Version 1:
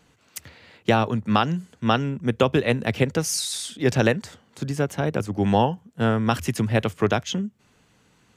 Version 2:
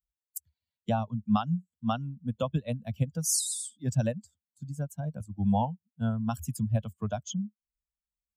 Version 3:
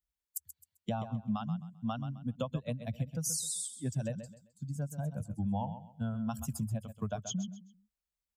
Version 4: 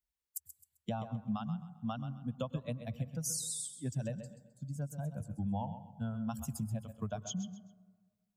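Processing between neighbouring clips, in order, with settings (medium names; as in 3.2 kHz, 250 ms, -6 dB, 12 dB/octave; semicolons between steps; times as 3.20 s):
expander on every frequency bin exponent 2; FFT filter 210 Hz 0 dB, 390 Hz -22 dB, 600 Hz -3 dB, 1.3 kHz -8 dB, 2 kHz -23 dB, 3.2 kHz -9 dB, 4.7 kHz -6 dB, 7.7 kHz +5 dB, 12 kHz +3 dB
compression 5:1, threshold -32 dBFS, peak gain reduction 11 dB; feedback delay 131 ms, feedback 28%, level -11 dB
reverberation RT60 1.5 s, pre-delay 92 ms, DRR 17.5 dB; trim -2.5 dB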